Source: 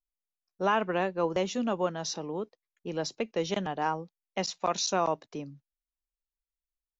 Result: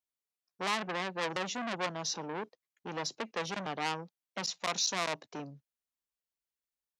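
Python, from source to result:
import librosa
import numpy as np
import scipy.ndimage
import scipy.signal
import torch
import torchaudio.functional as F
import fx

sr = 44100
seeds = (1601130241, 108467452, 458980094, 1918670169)

y = scipy.signal.sosfilt(scipy.signal.butter(2, 100.0, 'highpass', fs=sr, output='sos'), x)
y = fx.transformer_sat(y, sr, knee_hz=3900.0)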